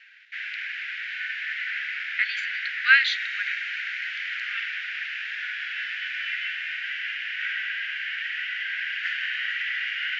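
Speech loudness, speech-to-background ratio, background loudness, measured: −24.0 LKFS, 5.0 dB, −29.0 LKFS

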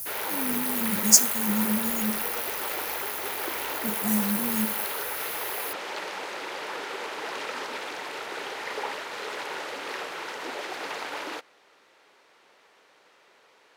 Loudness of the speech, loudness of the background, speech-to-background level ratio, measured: −25.5 LKFS, −33.5 LKFS, 8.0 dB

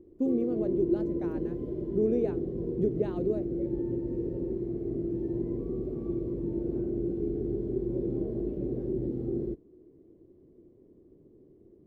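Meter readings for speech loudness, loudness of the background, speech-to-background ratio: −32.0 LKFS, −33.0 LKFS, 1.0 dB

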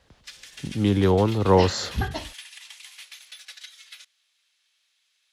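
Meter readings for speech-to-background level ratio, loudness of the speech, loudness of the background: 19.5 dB, −22.0 LKFS, −41.5 LKFS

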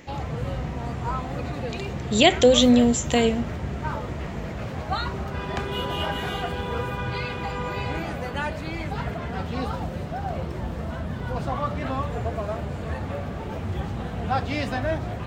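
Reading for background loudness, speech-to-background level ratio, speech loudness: −30.0 LKFS, 11.0 dB, −19.0 LKFS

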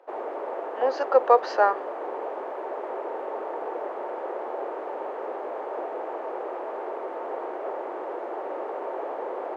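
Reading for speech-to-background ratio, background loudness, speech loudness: 10.5 dB, −33.5 LKFS, −23.0 LKFS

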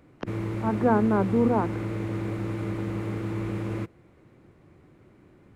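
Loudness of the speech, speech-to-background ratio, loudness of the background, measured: −25.0 LKFS, 6.5 dB, −31.5 LKFS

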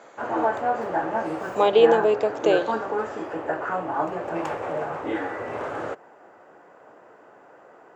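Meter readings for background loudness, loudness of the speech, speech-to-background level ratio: −28.0 LKFS, −20.5 LKFS, 7.5 dB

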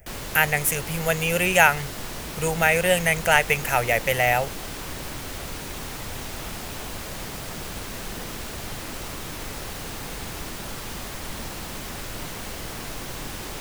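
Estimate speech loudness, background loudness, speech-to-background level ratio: −21.0 LKFS, −33.5 LKFS, 12.5 dB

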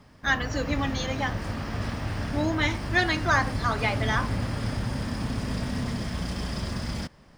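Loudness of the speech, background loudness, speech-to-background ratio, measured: −27.5 LKFS, −31.5 LKFS, 4.0 dB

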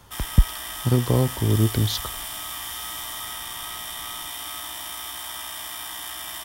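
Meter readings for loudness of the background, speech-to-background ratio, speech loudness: −31.5 LKFS, 8.0 dB, −23.5 LKFS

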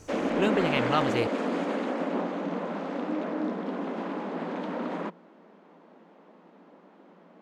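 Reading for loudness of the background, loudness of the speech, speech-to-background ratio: −30.5 LKFS, −29.0 LKFS, 1.5 dB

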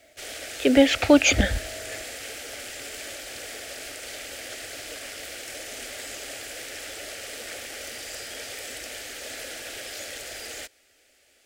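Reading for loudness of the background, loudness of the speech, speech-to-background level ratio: −35.5 LKFS, −19.5 LKFS, 16.0 dB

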